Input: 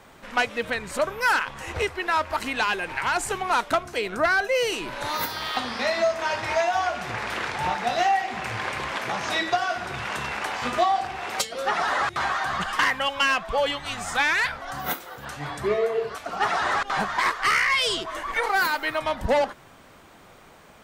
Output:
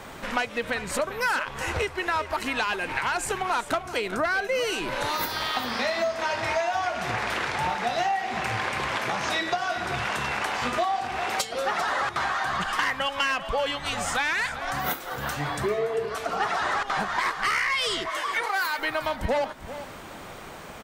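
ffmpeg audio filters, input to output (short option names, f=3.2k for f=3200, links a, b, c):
-filter_complex "[0:a]asettb=1/sr,asplit=3[a][b][c];[a]atrim=end=18.094[d];[b]atrim=start=18.09:end=18.79,asetpts=PTS-STARTPTS,afade=t=in:d=0.004:c=qsin,afade=t=out:st=0.696:d=0.004:c=qsin,highpass=f=760:p=1[e];[c]atrim=start=18.786[f];[d][e]acrossfade=d=0.004:c1=hsin:c2=qsin[g];[g][f]acrossfade=d=0.004:c1=qsin:c2=hsin,acompressor=threshold=-37dB:ratio=3,aecho=1:1:394|788:0.211|0.0338,volume=9dB"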